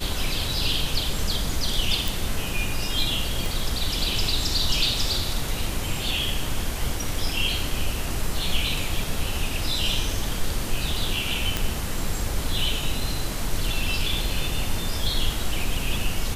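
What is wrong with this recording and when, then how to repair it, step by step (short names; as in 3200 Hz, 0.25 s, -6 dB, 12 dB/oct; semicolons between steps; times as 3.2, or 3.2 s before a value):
2.08 pop
3.46 pop
11.57 pop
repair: de-click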